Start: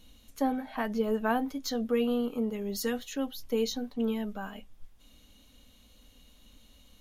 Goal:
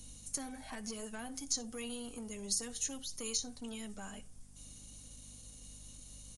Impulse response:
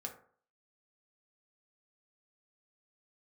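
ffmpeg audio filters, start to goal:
-filter_complex "[0:a]equalizer=f=3.4k:w=1:g=-14.5,aeval=exprs='val(0)+0.00158*(sin(2*PI*50*n/s)+sin(2*PI*2*50*n/s)/2+sin(2*PI*3*50*n/s)/3+sin(2*PI*4*50*n/s)/4+sin(2*PI*5*50*n/s)/5)':c=same,acrossover=split=120|1600[a][b][c];[a]acompressor=threshold=-47dB:ratio=4[d];[b]acompressor=threshold=-43dB:ratio=4[e];[c]acompressor=threshold=-49dB:ratio=4[f];[d][e][f]amix=inputs=3:normalize=0,acrossover=split=2200[g][h];[g]asoftclip=type=tanh:threshold=-39.5dB[i];[h]crystalizer=i=9:c=0[j];[i][j]amix=inputs=2:normalize=0,atempo=1.1,asplit=2[k][l];[1:a]atrim=start_sample=2205,adelay=60[m];[l][m]afir=irnorm=-1:irlink=0,volume=-16dB[n];[k][n]amix=inputs=2:normalize=0,aresample=22050,aresample=44100"

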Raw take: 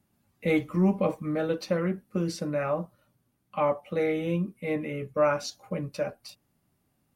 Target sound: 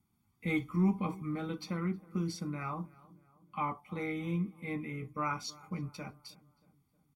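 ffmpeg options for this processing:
-filter_complex "[0:a]aecho=1:1:0.9:0.84,asplit=2[a][b];[b]adelay=315,lowpass=f=1.7k:p=1,volume=-21dB,asplit=2[c][d];[d]adelay=315,lowpass=f=1.7k:p=1,volume=0.53,asplit=2[e][f];[f]adelay=315,lowpass=f=1.7k:p=1,volume=0.53,asplit=2[g][h];[h]adelay=315,lowpass=f=1.7k:p=1,volume=0.53[i];[c][e][g][i]amix=inputs=4:normalize=0[j];[a][j]amix=inputs=2:normalize=0,volume=-8.5dB"

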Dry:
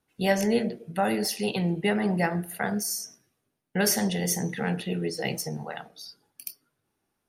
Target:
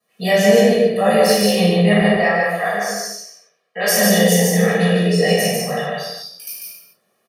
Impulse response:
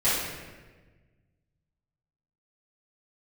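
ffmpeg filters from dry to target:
-filter_complex "[0:a]highpass=f=180:w=0.5412,highpass=f=180:w=1.3066,asettb=1/sr,asplit=3[a][b][c];[a]atrim=end=2.014[d];[b]atrim=start=2.01:end=3.88,asetpts=PTS-STARTPTS,afade=t=in:d=0.004:c=qsin,afade=t=out:st=1.866:d=0.004:c=qsin,acrossover=split=440 5700:gain=0.126 1 0.158[e][f][g];[e][f][g]amix=inputs=3:normalize=0[h];[c]atrim=start=3.876[i];[d][h]acrossfade=d=0.004:c1=hsin:c2=qsin[j];[j][i]acrossfade=d=0.004:c1=qsin:c2=hsin,aecho=1:1:1.7:0.87,asplit=2[k][l];[l]alimiter=limit=-18.5dB:level=0:latency=1,volume=-2dB[m];[k][m]amix=inputs=2:normalize=0,aecho=1:1:146:0.708[n];[1:a]atrim=start_sample=2205,afade=t=out:st=0.36:d=0.01,atrim=end_sample=16317[o];[n][o]afir=irnorm=-1:irlink=0,volume=-8.5dB"

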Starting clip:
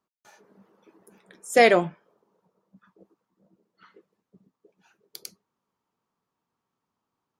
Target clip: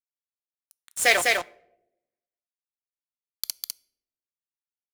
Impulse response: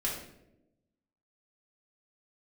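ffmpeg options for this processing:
-filter_complex "[0:a]highshelf=f=9.5k:g=5,atempo=1.5,acrossover=split=500[a][b];[a]acompressor=threshold=-34dB:ratio=6[c];[c][b]amix=inputs=2:normalize=0,asoftclip=type=tanh:threshold=-14.5dB,tiltshelf=f=1.1k:g=-8,acrusher=bits=4:mix=0:aa=0.5,aecho=1:1:202:0.708,asplit=2[d][e];[1:a]atrim=start_sample=2205,asetrate=48510,aresample=44100[f];[e][f]afir=irnorm=-1:irlink=0,volume=-23.5dB[g];[d][g]amix=inputs=2:normalize=0,volume=1.5dB"

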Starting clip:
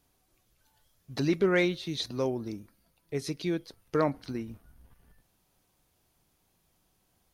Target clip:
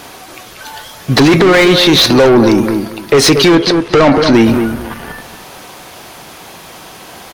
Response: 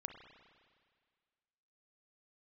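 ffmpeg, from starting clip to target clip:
-filter_complex "[0:a]asplit=2[a][b];[b]highpass=f=720:p=1,volume=30dB,asoftclip=type=tanh:threshold=-15.5dB[c];[a][c]amix=inputs=2:normalize=0,lowpass=f=2.6k:p=1,volume=-6dB,asettb=1/sr,asplit=3[d][e][f];[d]atrim=end=3.554[g];[e]atrim=start=3.55:end=4.34,asetpts=PTS-STARTPTS,afade=t=in:d=0.004:c=qsin,afade=t=out:st=0.786:d=0.004:c=qsin,lowpass=6.7k[h];[f]atrim=start=4.336[i];[g][h]acrossfade=d=0.004:c1=hsin:c2=qsin[j];[j][i]acrossfade=d=0.004:c1=qsin:c2=hsin,asplit=2[k][l];[l]adelay=230,lowpass=f=1.2k:p=1,volume=-10dB,asplit=2[m][n];[n]adelay=230,lowpass=f=1.2k:p=1,volume=0.23,asplit=2[o][p];[p]adelay=230,lowpass=f=1.2k:p=1,volume=0.23[q];[k][m][o][q]amix=inputs=4:normalize=0,alimiter=level_in=23dB:limit=-1dB:release=50:level=0:latency=1,volume=-1dB"

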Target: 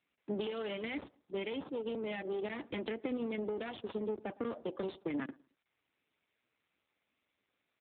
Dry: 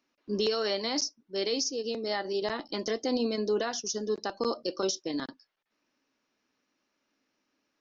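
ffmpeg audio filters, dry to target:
-filter_complex "[0:a]equalizer=f=2.2k:w=4.7:g=11,afwtdn=0.00794,lowshelf=f=170:g=-7.5,aeval=exprs='clip(val(0),-1,0.015)':c=same,acompressor=threshold=-33dB:ratio=6,asplit=2[a][b];[b]adelay=109,lowpass=f=1.3k:p=1,volume=-23.5dB,asplit=2[c][d];[d]adelay=109,lowpass=f=1.3k:p=1,volume=0.34[e];[a][c][e]amix=inputs=3:normalize=0,acrossover=split=360|3000[f][g][h];[g]acompressor=threshold=-43dB:ratio=6[i];[f][i][h]amix=inputs=3:normalize=0,volume=4dB" -ar 8000 -c:a libopencore_amrnb -b:a 7400

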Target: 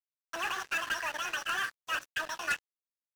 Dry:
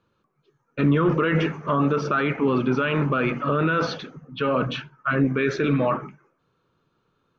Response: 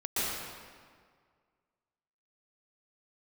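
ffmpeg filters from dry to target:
-filter_complex "[0:a]equalizer=f=730:w=1.8:g=10.5,asplit=2[a][b];[b]acrusher=samples=39:mix=1:aa=0.000001:lfo=1:lforange=39:lforate=0.74,volume=-5.5dB[c];[a][c]amix=inputs=2:normalize=0,asplit=3[d][e][f];[d]bandpass=f=730:t=q:w=8,volume=0dB[g];[e]bandpass=f=1.09k:t=q:w=8,volume=-6dB[h];[f]bandpass=f=2.44k:t=q:w=8,volume=-9dB[i];[g][h][i]amix=inputs=3:normalize=0,aeval=exprs='0.211*(cos(1*acos(clip(val(0)/0.211,-1,1)))-cos(1*PI/2))+0.075*(cos(3*acos(clip(val(0)/0.211,-1,1)))-cos(3*PI/2))+0.0531*(cos(5*acos(clip(val(0)/0.211,-1,1)))-cos(5*PI/2))':c=same,aeval=exprs='sgn(val(0))*max(abs(val(0))-0.0106,0)':c=same,acrusher=bits=4:mode=log:mix=0:aa=0.000001,asetrate=103194,aresample=44100"

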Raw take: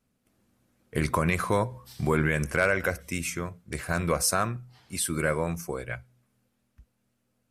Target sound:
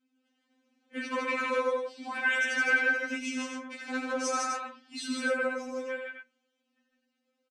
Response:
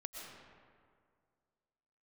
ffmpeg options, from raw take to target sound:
-filter_complex "[0:a]asettb=1/sr,asplit=3[a][b][c];[a]atrim=end=2.154[d];[b]atrim=start=2.15:end=2.58,asetpts=PTS-STARTPTS,afade=t=in:d=0.004:c=qsin,afade=t=out:st=0.426:d=0.004:c=qsin,highshelf=f=2.5k:g=11[e];[c]atrim=start=2.576[f];[d][e]acrossfade=d=0.004:c1=hsin:c2=qsin[g];[g][f]acrossfade=d=0.004:c1=qsin:c2=hsin,flanger=delay=8.2:depth=2.8:regen=-38:speed=1:shape=triangular,highpass=180,equalizer=f=320:t=q:w=4:g=9,equalizer=f=960:t=q:w=4:g=-3,equalizer=f=1.6k:t=q:w=4:g=4,equalizer=f=2.9k:t=q:w=4:g=8,lowpass=f=6.6k:w=0.5412,lowpass=f=6.6k:w=1.3066,aecho=1:1:81.63|154.5|253.6:0.501|0.794|0.447,afftfilt=real='re*3.46*eq(mod(b,12),0)':imag='im*3.46*eq(mod(b,12),0)':win_size=2048:overlap=0.75"

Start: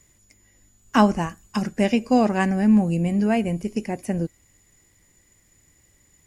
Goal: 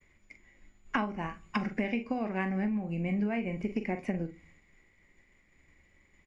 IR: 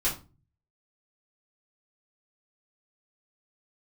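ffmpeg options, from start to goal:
-filter_complex "[0:a]agate=range=-33dB:threshold=-54dB:ratio=3:detection=peak,lowpass=2.8k,equalizer=f=110:t=o:w=0.48:g=-11.5,asplit=2[a][b];[b]adelay=43,volume=-9dB[c];[a][c]amix=inputs=2:normalize=0,acompressor=threshold=-29dB:ratio=16,equalizer=f=2.2k:t=o:w=0.34:g=10.5,asplit=2[d][e];[1:a]atrim=start_sample=2205[f];[e][f]afir=irnorm=-1:irlink=0,volume=-20.5dB[g];[d][g]amix=inputs=2:normalize=0"

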